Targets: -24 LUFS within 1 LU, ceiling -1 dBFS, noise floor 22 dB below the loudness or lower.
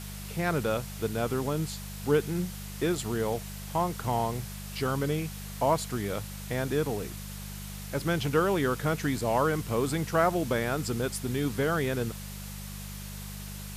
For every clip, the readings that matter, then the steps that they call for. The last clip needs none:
hum 50 Hz; harmonics up to 200 Hz; hum level -38 dBFS; noise floor -40 dBFS; noise floor target -53 dBFS; loudness -30.5 LUFS; peak -11.5 dBFS; loudness target -24.0 LUFS
-> de-hum 50 Hz, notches 4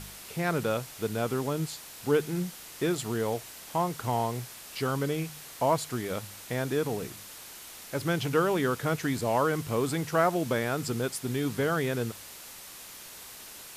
hum none; noise floor -46 dBFS; noise floor target -52 dBFS
-> denoiser 6 dB, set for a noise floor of -46 dBFS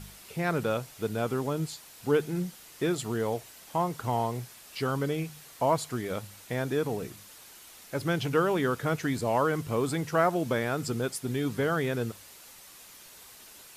noise floor -51 dBFS; noise floor target -52 dBFS
-> denoiser 6 dB, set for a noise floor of -51 dBFS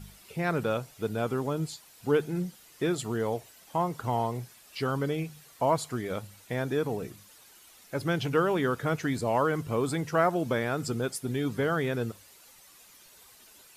noise floor -56 dBFS; loudness -30.0 LUFS; peak -11.5 dBFS; loudness target -24.0 LUFS
-> gain +6 dB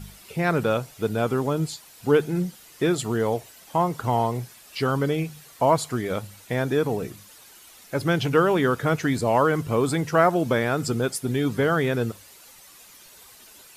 loudness -24.0 LUFS; peak -5.5 dBFS; noise floor -50 dBFS

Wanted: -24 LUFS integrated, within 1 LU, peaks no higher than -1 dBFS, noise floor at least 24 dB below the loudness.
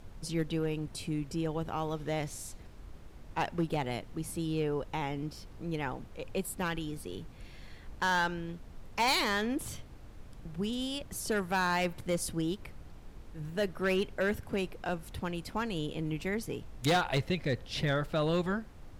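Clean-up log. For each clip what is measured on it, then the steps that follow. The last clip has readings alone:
clipped 0.9%; flat tops at -23.0 dBFS; noise floor -50 dBFS; noise floor target -58 dBFS; loudness -33.5 LUFS; peak -23.0 dBFS; loudness target -24.0 LUFS
-> clip repair -23 dBFS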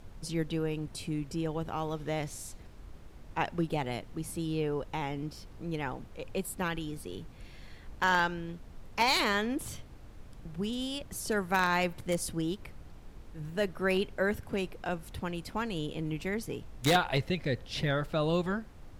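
clipped 0.0%; noise floor -50 dBFS; noise floor target -57 dBFS
-> noise print and reduce 7 dB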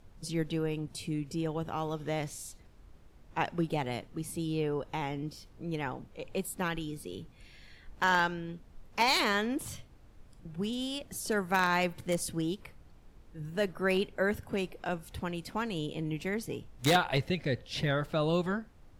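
noise floor -56 dBFS; noise floor target -57 dBFS
-> noise print and reduce 6 dB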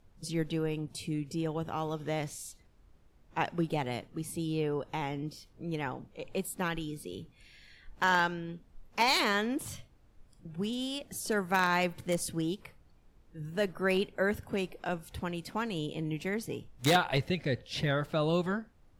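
noise floor -62 dBFS; loudness -32.5 LUFS; peak -14.0 dBFS; loudness target -24.0 LUFS
-> gain +8.5 dB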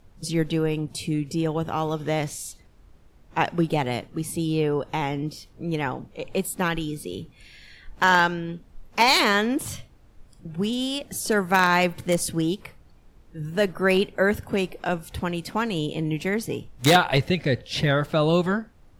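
loudness -24.0 LUFS; peak -5.5 dBFS; noise floor -53 dBFS

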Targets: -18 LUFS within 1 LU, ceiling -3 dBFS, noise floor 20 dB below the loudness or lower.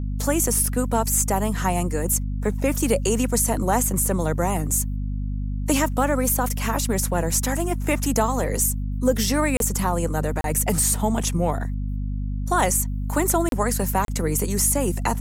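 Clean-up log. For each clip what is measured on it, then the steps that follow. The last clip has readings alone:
dropouts 4; longest dropout 32 ms; hum 50 Hz; harmonics up to 250 Hz; hum level -24 dBFS; loudness -22.5 LUFS; peak -7.5 dBFS; loudness target -18.0 LUFS
-> interpolate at 9.57/10.41/13.49/14.05, 32 ms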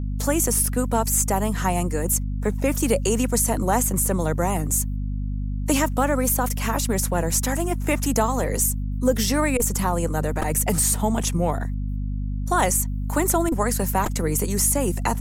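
dropouts 0; hum 50 Hz; harmonics up to 250 Hz; hum level -24 dBFS
-> de-hum 50 Hz, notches 5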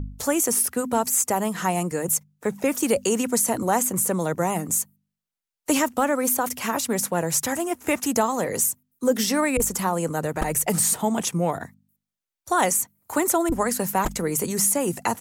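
hum none; loudness -23.0 LUFS; peak -9.0 dBFS; loudness target -18.0 LUFS
-> gain +5 dB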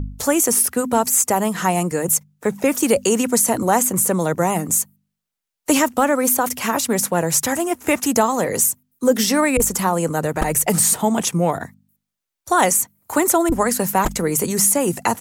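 loudness -18.0 LUFS; peak -4.0 dBFS; noise floor -82 dBFS

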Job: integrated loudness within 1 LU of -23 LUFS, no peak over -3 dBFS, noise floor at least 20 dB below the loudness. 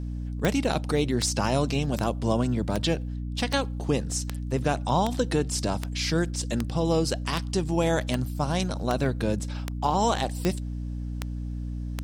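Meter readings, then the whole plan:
clicks 16; hum 60 Hz; harmonics up to 300 Hz; hum level -30 dBFS; loudness -27.5 LUFS; peak -9.0 dBFS; loudness target -23.0 LUFS
-> de-click; notches 60/120/180/240/300 Hz; gain +4.5 dB

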